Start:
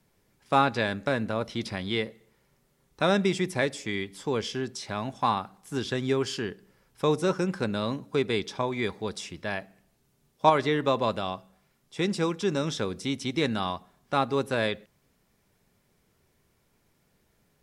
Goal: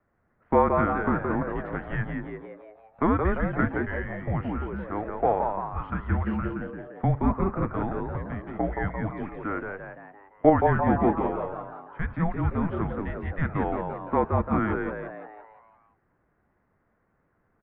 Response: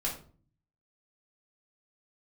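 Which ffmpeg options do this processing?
-filter_complex "[0:a]asettb=1/sr,asplit=3[a][b][c];[a]atrim=end=8.054[d];[b]atrim=start=8.05:end=8.55,asetpts=PTS-STARTPTS,afade=t=in:d=0.004:c=qsin,afade=t=out:st=0.496:d=0.004:c=qsin,acompressor=threshold=-32dB:ratio=6[e];[c]atrim=start=8.546[f];[d][e]acrossfade=d=0.004:c1=hsin:c2=qsin[g];[g][f]acrossfade=d=0.004:c1=qsin:c2=hsin,asplit=2[h][i];[i]asplit=7[j][k][l][m][n][o][p];[j]adelay=172,afreqshift=130,volume=-5dB[q];[k]adelay=344,afreqshift=260,volume=-10.7dB[r];[l]adelay=516,afreqshift=390,volume=-16.4dB[s];[m]adelay=688,afreqshift=520,volume=-22dB[t];[n]adelay=860,afreqshift=650,volume=-27.7dB[u];[o]adelay=1032,afreqshift=780,volume=-33.4dB[v];[p]adelay=1204,afreqshift=910,volume=-39.1dB[w];[q][r][s][t][u][v][w]amix=inputs=7:normalize=0[x];[h][x]amix=inputs=2:normalize=0,highpass=f=360:t=q:w=0.5412,highpass=f=360:t=q:w=1.307,lowpass=f=2.1k:t=q:w=0.5176,lowpass=f=2.1k:t=q:w=0.7071,lowpass=f=2.1k:t=q:w=1.932,afreqshift=-320,volume=2.5dB"

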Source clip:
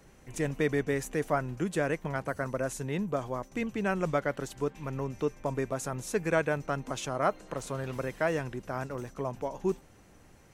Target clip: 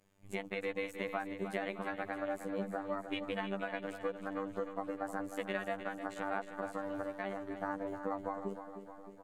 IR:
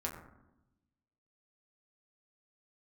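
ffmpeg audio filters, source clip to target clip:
-filter_complex "[0:a]afwtdn=0.0126,acrossover=split=120|600[a][b][c];[a]acompressor=threshold=-54dB:ratio=4[d];[b]acompressor=threshold=-40dB:ratio=4[e];[c]acompressor=threshold=-36dB:ratio=4[f];[d][e][f]amix=inputs=3:normalize=0,alimiter=level_in=3.5dB:limit=-24dB:level=0:latency=1:release=438,volume=-3.5dB,afftfilt=real='hypot(re,im)*cos(PI*b)':imag='0':win_size=2048:overlap=0.75,asetrate=50274,aresample=44100,aecho=1:1:309|618|927|1236|1545|1854|2163:0.316|0.19|0.114|0.0683|0.041|0.0246|0.0148,volume=4.5dB"

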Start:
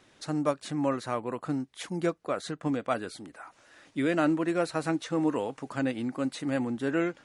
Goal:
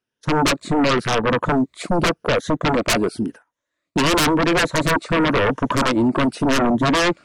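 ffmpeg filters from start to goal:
-filter_complex "[0:a]afftfilt=real='re*pow(10,9/40*sin(2*PI*(1.1*log(max(b,1)*sr/1024/100)/log(2)-(0.94)*(pts-256)/sr)))':imag='im*pow(10,9/40*sin(2*PI*(1.1*log(max(b,1)*sr/1024/100)/log(2)-(0.94)*(pts-256)/sr)))':win_size=1024:overlap=0.75,afwtdn=0.0141,asplit=2[a][b];[b]acompressor=threshold=-35dB:ratio=6,volume=1dB[c];[a][c]amix=inputs=2:normalize=0,aeval=exprs='0.398*(cos(1*acos(clip(val(0)/0.398,-1,1)))-cos(1*PI/2))+0.0178*(cos(7*acos(clip(val(0)/0.398,-1,1)))-cos(7*PI/2))':c=same,agate=range=-30dB:threshold=-52dB:ratio=16:detection=peak,aeval=exprs='0.355*sin(PI/2*10*val(0)/0.355)':c=same,asuperstop=centerf=800:order=4:qfactor=7.5,volume=-4.5dB"

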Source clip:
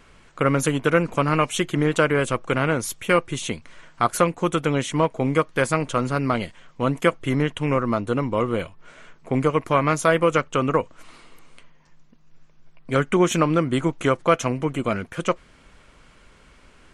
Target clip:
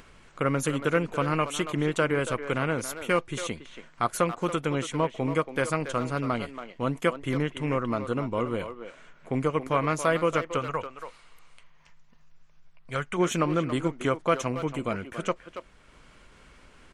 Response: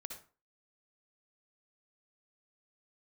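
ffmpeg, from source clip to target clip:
-filter_complex "[0:a]asplit=3[a][b][c];[a]afade=t=out:st=10.58:d=0.02[d];[b]equalizer=f=290:w=0.96:g=-12,afade=t=in:st=10.58:d=0.02,afade=t=out:st=13.17:d=0.02[e];[c]afade=t=in:st=13.17:d=0.02[f];[d][e][f]amix=inputs=3:normalize=0,asplit=2[g][h];[h]adelay=280,highpass=300,lowpass=3.4k,asoftclip=type=hard:threshold=-13dB,volume=-9dB[i];[g][i]amix=inputs=2:normalize=0,acompressor=mode=upward:threshold=-40dB:ratio=2.5,volume=-6dB"

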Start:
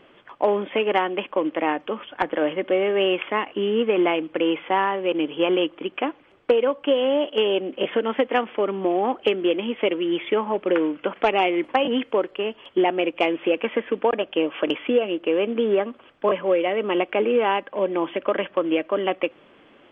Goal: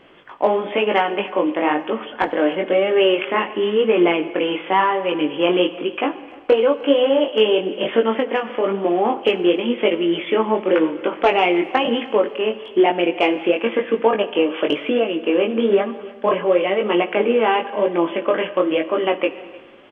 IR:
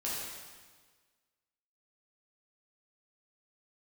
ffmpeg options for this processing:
-filter_complex "[0:a]flanger=delay=17.5:depth=5.5:speed=1,asplit=2[a][b];[1:a]atrim=start_sample=2205[c];[b][c]afir=irnorm=-1:irlink=0,volume=-15.5dB[d];[a][d]amix=inputs=2:normalize=0,asettb=1/sr,asplit=3[e][f][g];[e]atrim=end=8.124[h];[f]atrim=start=8.12:end=8.64,asetpts=PTS-STARTPTS,afade=t=in:d=0.004:c=qsin,afade=t=out:st=0.516:d=0.004:c=qsin,acompressor=threshold=-22dB:ratio=6[i];[g]atrim=start=8.636[j];[h][i]acrossfade=d=0.004:c1=hsin:c2=qsin[k];[k][j]acrossfade=d=0.004:c1=qsin:c2=hsin,aecho=1:1:303:0.075,volume=6dB"

